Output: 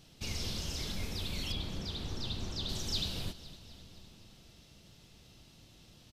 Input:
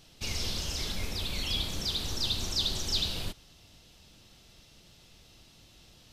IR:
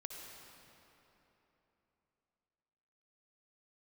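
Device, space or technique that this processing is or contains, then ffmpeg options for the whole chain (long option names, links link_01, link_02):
ducked reverb: -filter_complex "[0:a]asettb=1/sr,asplit=3[link_01][link_02][link_03];[link_01]atrim=end=1.524[link_04];[link_02]atrim=start=1.52:end=2.69,asetpts=PTS-STARTPTS,afade=type=in:duration=0.004:curve=qsin,afade=type=out:start_time=1.166:duration=0.004:curve=qsin,lowpass=frequency=2500:poles=1[link_05];[link_03]atrim=start=2.686[link_06];[link_04][link_05]acrossfade=duration=0.004:curve1=hsin:curve2=qsin[link_07];[link_07][link_06]acrossfade=duration=0.004:curve1=qsin:curve2=hsin,equalizer=frequency=160:width=0.54:gain=5.5,asplit=3[link_08][link_09][link_10];[1:a]atrim=start_sample=2205[link_11];[link_09][link_11]afir=irnorm=-1:irlink=0[link_12];[link_10]apad=whole_len=269921[link_13];[link_12][link_13]sidechaincompress=threshold=-40dB:ratio=8:attack=16:release=611,volume=-4.5dB[link_14];[link_08][link_14]amix=inputs=2:normalize=0,aecho=1:1:255|510|765|1020|1275|1530:0.158|0.0919|0.0533|0.0309|0.0179|0.0104,volume=-6dB"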